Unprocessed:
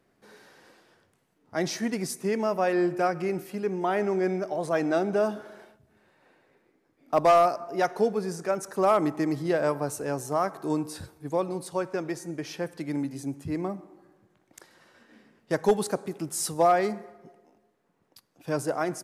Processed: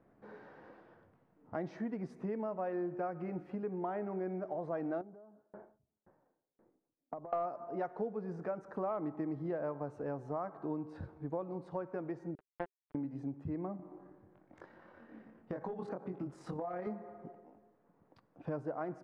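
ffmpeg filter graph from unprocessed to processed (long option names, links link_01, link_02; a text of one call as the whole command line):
ffmpeg -i in.wav -filter_complex "[0:a]asettb=1/sr,asplit=3[link_01][link_02][link_03];[link_01]atrim=end=5.014[link_04];[link_02]atrim=start=5.01:end=7.33,asetpts=PTS-STARTPTS,afade=type=in:duration=0.004:curve=qsin,afade=type=out:start_time=2.316:duration=0.004:curve=qsin,lowpass=1200,acompressor=threshold=-34dB:ratio=12:attack=3.2:release=140:knee=1:detection=peak,aeval=exprs='val(0)*pow(10,-37*if(lt(mod(1.9*n/s,1),2*abs(1.9)/1000),1-mod(1.9*n/s,1)/(2*abs(1.9)/1000),(mod(1.9*n/s,1)-2*abs(1.9)/1000)/(1-2*abs(1.9)/1000))/20)':channel_layout=same[link_05];[link_03]atrim=start=7.326[link_06];[link_04][link_05]acrossfade=duration=0.004:curve1=hsin:curve2=qsin[link_07];[link_07][link_06]acrossfade=duration=0.004:curve1=qsin:curve2=hsin,asettb=1/sr,asplit=3[link_08][link_09][link_10];[link_08]atrim=end=12.354[link_11];[link_09]atrim=start=12.35:end=12.95,asetpts=PTS-STARTPTS,afade=type=in:duration=0.004:curve=qsin,afade=type=out:start_time=0.596:duration=0.004:curve=qsin,acontrast=77,bandpass=frequency=820:width_type=q:width=1.8,acrusher=bits=3:mix=0:aa=0.5[link_12];[link_10]atrim=start=12.946[link_13];[link_11][link_12]acrossfade=duration=0.004:curve1=hsin:curve2=qsin[link_14];[link_14][link_13]acrossfade=duration=0.004:curve1=qsin:curve2=hsin,asettb=1/sr,asplit=3[link_15][link_16][link_17];[link_15]atrim=end=13.774[link_18];[link_16]atrim=start=13.77:end=16.87,asetpts=PTS-STARTPTS,afade=type=in:duration=0.004:curve=qsin,afade=type=out:start_time=3.096:duration=0.004:curve=qsin,tremolo=f=34:d=0.4,asplit=2[link_19][link_20];[link_20]adelay=22,volume=-2.5dB[link_21];[link_19][link_21]amix=inputs=2:normalize=0,atrim=end_sample=136710,acompressor=threshold=-29dB:ratio=10:attack=3.2:release=140:knee=1:detection=peak[link_22];[link_17]atrim=start=16.866[link_23];[link_18][link_22]acrossfade=duration=0.004:curve1=hsin:curve2=qsin[link_24];[link_24][link_23]acrossfade=duration=0.004:curve1=qsin:curve2=hsin,lowpass=1200,bandreject=frequency=390:width=12,acompressor=threshold=-42dB:ratio=3,volume=2.5dB" out.wav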